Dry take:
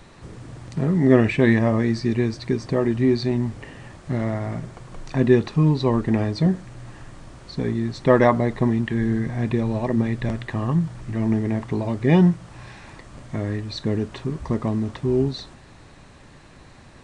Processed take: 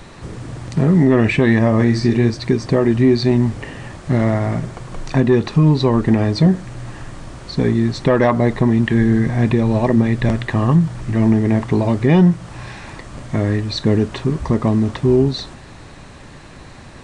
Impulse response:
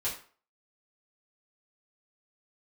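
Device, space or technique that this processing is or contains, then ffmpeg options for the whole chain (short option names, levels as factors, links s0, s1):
soft clipper into limiter: -filter_complex "[0:a]asettb=1/sr,asplit=3[s0][s1][s2];[s0]atrim=end=1.764[s3];[s1]atrim=start=1.76:end=2.3,asetpts=PTS-STARTPTS,afade=t=in:d=0.004:c=qsin,afade=t=out:st=0.536:d=0.004:c=qsin,asplit=2[s4][s5];[s5]adelay=42,volume=0.473[s6];[s4][s6]amix=inputs=2:normalize=0,atrim=end_sample=23814[s7];[s2]atrim=start=2.296[s8];[s3][s7]acrossfade=d=0.004:c1=hsin:c2=qsin[s9];[s9][s8]acrossfade=d=0.004:c1=qsin:c2=hsin,asoftclip=type=tanh:threshold=0.501,alimiter=limit=0.211:level=0:latency=1:release=231,volume=2.66"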